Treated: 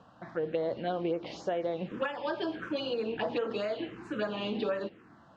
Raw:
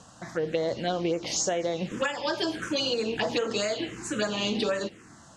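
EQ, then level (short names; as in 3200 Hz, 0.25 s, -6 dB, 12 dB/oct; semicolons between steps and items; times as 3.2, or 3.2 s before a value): air absorption 400 m; low shelf 140 Hz -10 dB; bell 2000 Hz -4.5 dB 0.38 oct; -1.5 dB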